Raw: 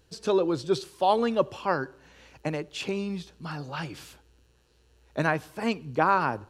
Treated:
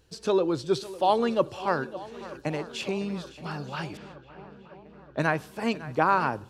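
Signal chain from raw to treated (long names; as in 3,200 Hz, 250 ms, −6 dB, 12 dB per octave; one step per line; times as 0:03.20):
on a send: feedback echo with a long and a short gap by turns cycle 923 ms, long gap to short 1.5 to 1, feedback 59%, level −17 dB
0:03.97–0:05.31: on the sum: low-pass that shuts in the quiet parts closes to 1,700 Hz, open at −25.5 dBFS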